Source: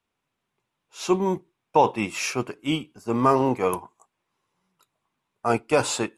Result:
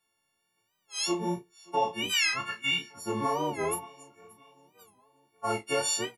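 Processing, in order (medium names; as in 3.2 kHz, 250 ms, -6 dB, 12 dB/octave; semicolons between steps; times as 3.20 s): partials quantised in pitch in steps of 4 st; 2.10–2.78 s: FFT filter 170 Hz 0 dB, 360 Hz -12 dB, 1.5 kHz +14 dB, 10 kHz -1 dB; compression 2.5:1, threshold -26 dBFS, peak gain reduction 11.5 dB; flange 1.3 Hz, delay 5.6 ms, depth 9 ms, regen -43%; doubling 34 ms -9 dB; feedback delay 580 ms, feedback 50%, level -24 dB; warped record 45 rpm, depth 160 cents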